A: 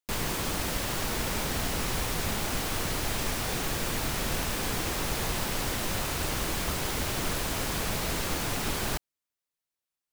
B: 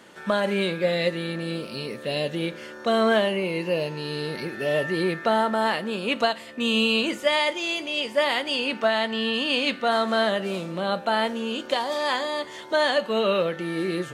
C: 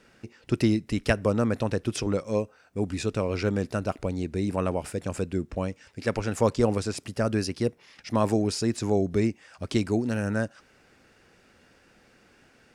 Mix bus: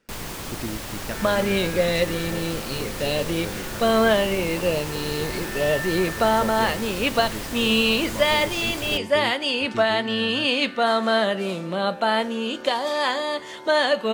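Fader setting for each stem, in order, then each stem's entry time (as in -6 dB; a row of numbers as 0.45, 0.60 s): -2.5, +2.0, -10.0 dB; 0.00, 0.95, 0.00 s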